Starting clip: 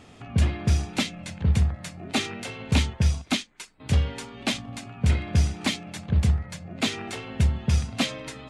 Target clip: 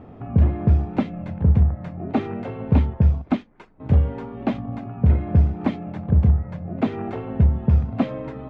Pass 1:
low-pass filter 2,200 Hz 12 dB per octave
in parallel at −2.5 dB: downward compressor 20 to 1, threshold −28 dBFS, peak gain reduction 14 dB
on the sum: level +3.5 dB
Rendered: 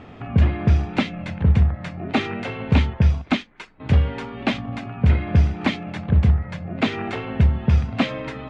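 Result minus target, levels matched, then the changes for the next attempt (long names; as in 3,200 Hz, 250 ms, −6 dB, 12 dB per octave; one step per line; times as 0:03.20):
2,000 Hz band +11.5 dB
change: low-pass filter 870 Hz 12 dB per octave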